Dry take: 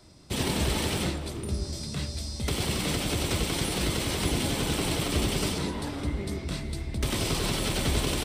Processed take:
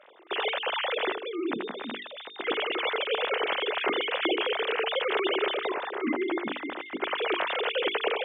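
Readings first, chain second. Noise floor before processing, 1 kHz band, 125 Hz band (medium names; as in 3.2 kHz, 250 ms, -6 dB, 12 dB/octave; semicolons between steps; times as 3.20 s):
-38 dBFS, +5.5 dB, under -25 dB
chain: formants replaced by sine waves; high-pass 260 Hz 12 dB/octave; hum notches 50/100/150/200/250/300/350/400/450 Hz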